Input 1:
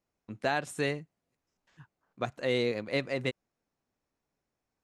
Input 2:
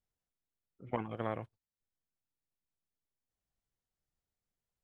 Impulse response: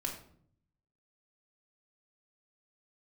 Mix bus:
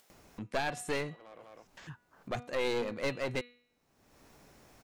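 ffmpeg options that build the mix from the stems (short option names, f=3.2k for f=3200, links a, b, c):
-filter_complex "[0:a]bandreject=f=243.3:t=h:w=4,bandreject=f=486.6:t=h:w=4,bandreject=f=729.9:t=h:w=4,bandreject=f=973.2:t=h:w=4,bandreject=f=1.2165k:t=h:w=4,bandreject=f=1.4598k:t=h:w=4,bandreject=f=1.7031k:t=h:w=4,bandreject=f=1.9464k:t=h:w=4,bandreject=f=2.1897k:t=h:w=4,bandreject=f=2.433k:t=h:w=4,bandreject=f=2.6763k:t=h:w=4,bandreject=f=2.9196k:t=h:w=4,bandreject=f=3.1629k:t=h:w=4,bandreject=f=3.4062k:t=h:w=4,bandreject=f=3.6495k:t=h:w=4,bandreject=f=3.8928k:t=h:w=4,bandreject=f=4.1361k:t=h:w=4,bandreject=f=4.3794k:t=h:w=4,adelay=100,volume=0.5dB[a];[1:a]highpass=370,asoftclip=type=tanh:threshold=-37dB,volume=-12dB,asplit=2[b][c];[c]volume=-8.5dB,aecho=0:1:201:1[d];[a][b][d]amix=inputs=3:normalize=0,acompressor=mode=upward:threshold=-38dB:ratio=2.5,aeval=exprs='clip(val(0),-1,0.02)':c=same"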